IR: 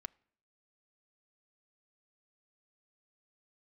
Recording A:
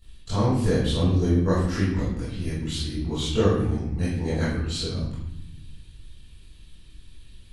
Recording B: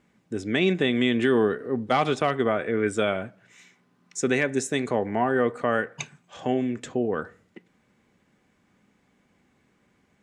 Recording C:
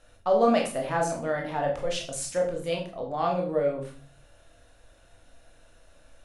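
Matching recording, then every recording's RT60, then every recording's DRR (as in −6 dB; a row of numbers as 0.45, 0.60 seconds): B; 0.95 s, non-exponential decay, 0.40 s; −14.0, 10.0, 0.0 decibels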